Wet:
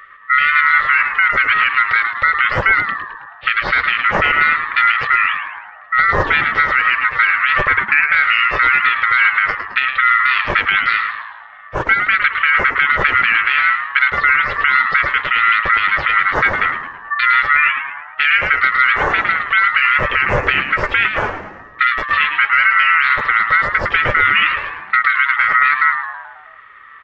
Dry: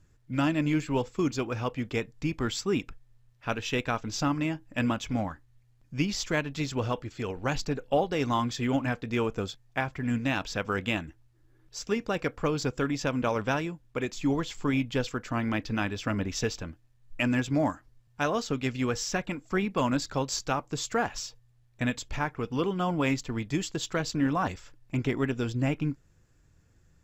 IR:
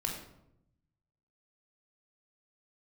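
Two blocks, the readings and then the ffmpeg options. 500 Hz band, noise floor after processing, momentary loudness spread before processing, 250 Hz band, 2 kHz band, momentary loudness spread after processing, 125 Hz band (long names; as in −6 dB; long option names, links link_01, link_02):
+3.0 dB, −39 dBFS, 6 LU, −7.5 dB, +25.0 dB, 7 LU, −0.5 dB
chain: -filter_complex "[0:a]afftfilt=real='real(if(lt(b,272),68*(eq(floor(b/68),0)*3+eq(floor(b/68),1)*0+eq(floor(b/68),2)*1+eq(floor(b/68),3)*2)+mod(b,68),b),0)':imag='imag(if(lt(b,272),68*(eq(floor(b/68),0)*3+eq(floor(b/68),1)*0+eq(floor(b/68),2)*1+eq(floor(b/68),3)*2)+mod(b,68),b),0)':win_size=2048:overlap=0.75,aecho=1:1:4.3:0.33,acompressor=threshold=-31dB:ratio=16,highpass=160,equalizer=frequency=180:width_type=q:width=4:gain=3,equalizer=frequency=290:width_type=q:width=4:gain=4,equalizer=frequency=420:width_type=q:width=4:gain=-7,equalizer=frequency=600:width_type=q:width=4:gain=-4,equalizer=frequency=990:width_type=q:width=4:gain=-5,equalizer=frequency=1400:width_type=q:width=4:gain=-8,lowpass=frequency=2300:width=0.5412,lowpass=frequency=2300:width=1.3066,aeval=exprs='val(0)*sin(2*PI*310*n/s)':channel_layout=same,asplit=7[link_01][link_02][link_03][link_04][link_05][link_06][link_07];[link_02]adelay=108,afreqshift=-110,volume=-9dB[link_08];[link_03]adelay=216,afreqshift=-220,volume=-14.7dB[link_09];[link_04]adelay=324,afreqshift=-330,volume=-20.4dB[link_10];[link_05]adelay=432,afreqshift=-440,volume=-26dB[link_11];[link_06]adelay=540,afreqshift=-550,volume=-31.7dB[link_12];[link_07]adelay=648,afreqshift=-660,volume=-37.4dB[link_13];[link_01][link_08][link_09][link_10][link_11][link_12][link_13]amix=inputs=7:normalize=0,alimiter=level_in=30dB:limit=-1dB:release=50:level=0:latency=1,volume=-1dB"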